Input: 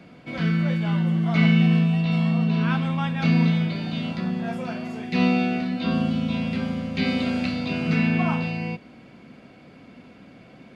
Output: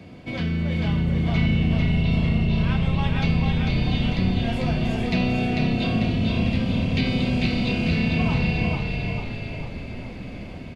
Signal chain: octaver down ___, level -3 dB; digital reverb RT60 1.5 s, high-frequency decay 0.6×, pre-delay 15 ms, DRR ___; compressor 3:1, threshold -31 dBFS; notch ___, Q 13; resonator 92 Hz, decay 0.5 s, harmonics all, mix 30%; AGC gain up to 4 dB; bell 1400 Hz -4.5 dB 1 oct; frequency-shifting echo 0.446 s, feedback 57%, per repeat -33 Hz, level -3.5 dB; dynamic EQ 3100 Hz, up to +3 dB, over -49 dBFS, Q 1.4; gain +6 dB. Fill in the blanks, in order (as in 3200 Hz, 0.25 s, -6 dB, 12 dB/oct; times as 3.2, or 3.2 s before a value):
1 oct, 17.5 dB, 1400 Hz